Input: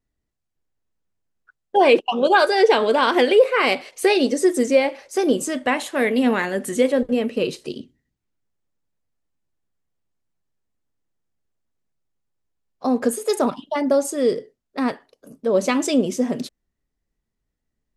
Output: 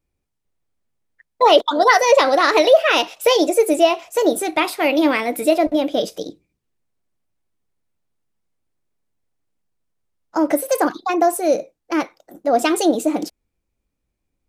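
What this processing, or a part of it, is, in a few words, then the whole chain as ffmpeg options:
nightcore: -af "asetrate=54684,aresample=44100,volume=1.33"

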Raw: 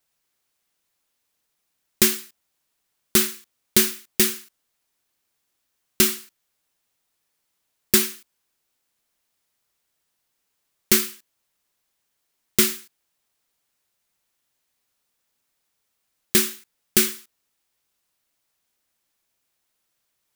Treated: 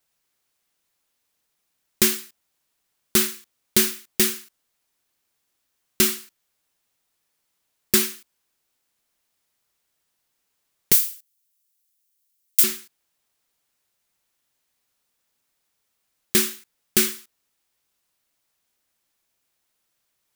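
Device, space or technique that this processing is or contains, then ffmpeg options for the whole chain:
parallel distortion: -filter_complex "[0:a]asplit=2[s0][s1];[s1]asoftclip=type=hard:threshold=0.141,volume=0.501[s2];[s0][s2]amix=inputs=2:normalize=0,asettb=1/sr,asplit=3[s3][s4][s5];[s3]atrim=end=10.924[s6];[s4]atrim=start=10.92:end=12.64,asetpts=PTS-STARTPTS,afade=t=in:d=0.004:c=qsin,afade=t=out:st=1.716:d=0.004:c=qsin,aderivative[s7];[s5]atrim=start=12.636[s8];[s6][s7]acrossfade=d=0.004:c1=hsin:c2=qsin[s9];[s9][s8]acrossfade=d=0.004:c1=qsin:c2=hsin,volume=0.708"

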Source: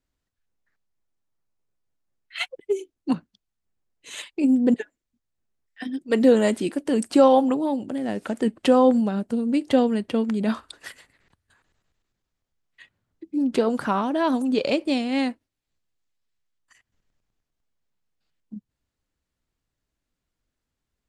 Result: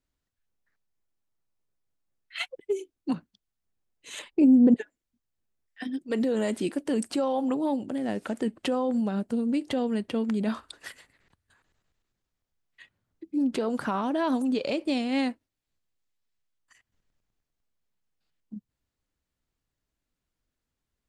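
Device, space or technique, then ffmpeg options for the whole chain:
stacked limiters: -filter_complex "[0:a]alimiter=limit=0.266:level=0:latency=1:release=327,alimiter=limit=0.15:level=0:latency=1:release=58,asettb=1/sr,asplit=3[s0][s1][s2];[s0]atrim=end=4.194[s3];[s1]atrim=start=4.19:end=4.77,asetpts=PTS-STARTPTS,afade=t=in:d=0.004:c=qsin,afade=t=out:st=0.576:d=0.004:c=qsin,tiltshelf=f=1500:g=7.5[s4];[s2]atrim=start=4.766[s5];[s3][s4]acrossfade=d=0.004:c1=hsin:c2=qsin[s6];[s6][s5]acrossfade=d=0.004:c1=qsin:c2=hsin,volume=0.75"

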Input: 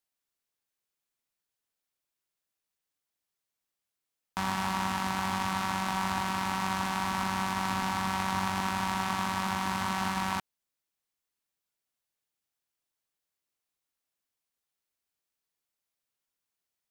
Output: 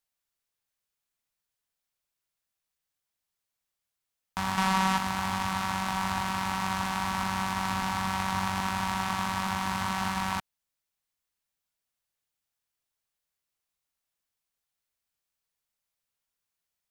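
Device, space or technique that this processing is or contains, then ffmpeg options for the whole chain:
low shelf boost with a cut just above: -filter_complex "[0:a]lowshelf=f=97:g=5.5,equalizer=f=320:t=o:w=1.1:g=-5,asettb=1/sr,asplit=3[s0][s1][s2];[s0]atrim=end=4.574[s3];[s1]atrim=start=4.57:end=4.98,asetpts=PTS-STARTPTS,afade=t=in:d=0.004:c=qsin,afade=t=out:st=0.406:d=0.004:c=qsin,aecho=1:1:5.3:0.96,atrim=end_sample=18081[s4];[s2]atrim=start=4.976[s5];[s3][s4]acrossfade=d=0.004:c1=hsin:c2=qsin[s6];[s6][s5]acrossfade=d=0.004:c1=qsin:c2=hsin,volume=1.12"

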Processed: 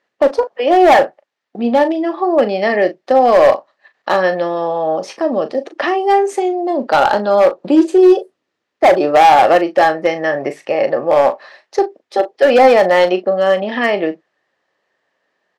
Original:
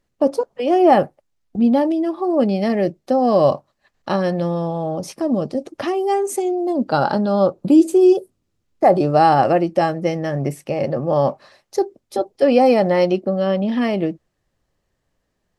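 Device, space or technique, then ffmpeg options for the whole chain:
megaphone: -filter_complex "[0:a]highpass=480,lowpass=3900,equalizer=f=1800:t=o:w=0.22:g=6.5,asoftclip=type=hard:threshold=0.211,asplit=2[s0][s1];[s1]adelay=38,volume=0.282[s2];[s0][s2]amix=inputs=2:normalize=0,volume=2.66"

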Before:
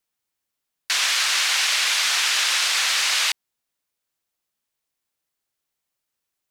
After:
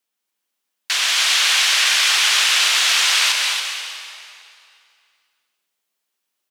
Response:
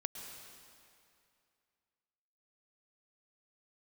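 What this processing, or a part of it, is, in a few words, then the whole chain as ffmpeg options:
stadium PA: -filter_complex "[0:a]highpass=f=200:w=0.5412,highpass=f=200:w=1.3066,equalizer=f=3100:t=o:w=0.56:g=3,aecho=1:1:174.9|244.9|279.9:0.282|0.282|0.501[s0];[1:a]atrim=start_sample=2205[s1];[s0][s1]afir=irnorm=-1:irlink=0,volume=1.41"

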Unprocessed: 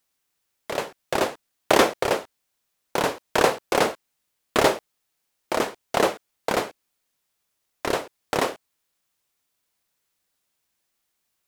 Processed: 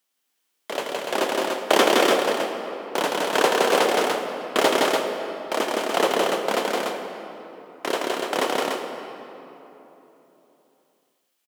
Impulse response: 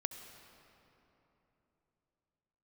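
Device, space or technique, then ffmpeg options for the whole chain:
stadium PA: -filter_complex "[0:a]highpass=f=200:w=0.5412,highpass=f=200:w=1.3066,equalizer=f=3100:t=o:w=0.22:g=5.5,aecho=1:1:166.2|291.5:0.794|0.631[s0];[1:a]atrim=start_sample=2205[s1];[s0][s1]afir=irnorm=-1:irlink=0"

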